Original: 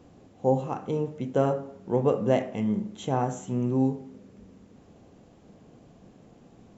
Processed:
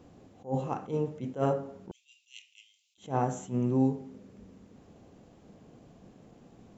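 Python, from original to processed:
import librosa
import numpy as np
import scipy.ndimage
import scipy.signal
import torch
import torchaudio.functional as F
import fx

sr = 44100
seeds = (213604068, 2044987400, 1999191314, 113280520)

y = fx.steep_highpass(x, sr, hz=2500.0, slope=72, at=(1.91, 2.98))
y = fx.attack_slew(y, sr, db_per_s=230.0)
y = y * 10.0 ** (-1.5 / 20.0)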